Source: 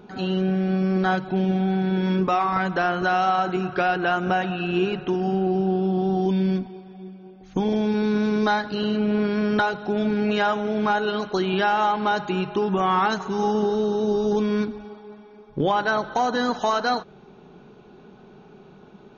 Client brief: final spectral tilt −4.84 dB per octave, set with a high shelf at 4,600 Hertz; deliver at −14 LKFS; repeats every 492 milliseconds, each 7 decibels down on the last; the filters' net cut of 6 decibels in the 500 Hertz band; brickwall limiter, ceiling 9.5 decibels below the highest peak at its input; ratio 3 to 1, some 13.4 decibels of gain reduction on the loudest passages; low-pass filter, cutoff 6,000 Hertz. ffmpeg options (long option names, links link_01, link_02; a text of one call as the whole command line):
ffmpeg -i in.wav -af "lowpass=6000,equalizer=frequency=500:width_type=o:gain=-8.5,highshelf=frequency=4600:gain=-4,acompressor=threshold=-39dB:ratio=3,alimiter=level_in=10.5dB:limit=-24dB:level=0:latency=1,volume=-10.5dB,aecho=1:1:492|984|1476|1968|2460:0.447|0.201|0.0905|0.0407|0.0183,volume=28dB" out.wav